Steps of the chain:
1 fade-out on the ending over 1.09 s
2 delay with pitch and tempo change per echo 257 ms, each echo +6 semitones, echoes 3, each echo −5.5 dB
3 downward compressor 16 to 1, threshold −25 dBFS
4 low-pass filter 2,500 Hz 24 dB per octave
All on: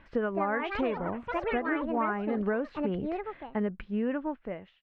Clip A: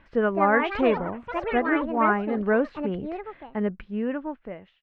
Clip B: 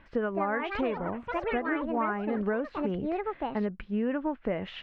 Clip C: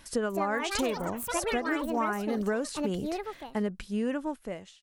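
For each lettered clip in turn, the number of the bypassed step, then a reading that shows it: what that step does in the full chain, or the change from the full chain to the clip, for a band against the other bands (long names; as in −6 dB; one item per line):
3, average gain reduction 3.5 dB
1, 4 kHz band +2.5 dB
4, 4 kHz band +10.5 dB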